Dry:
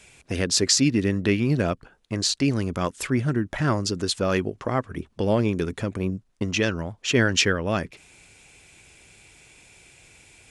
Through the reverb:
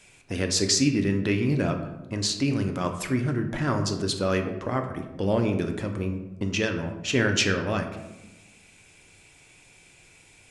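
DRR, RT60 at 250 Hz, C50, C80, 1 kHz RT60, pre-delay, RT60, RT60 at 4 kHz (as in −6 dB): 4.0 dB, 1.5 s, 8.0 dB, 10.0 dB, 0.95 s, 3 ms, 1.0 s, 0.60 s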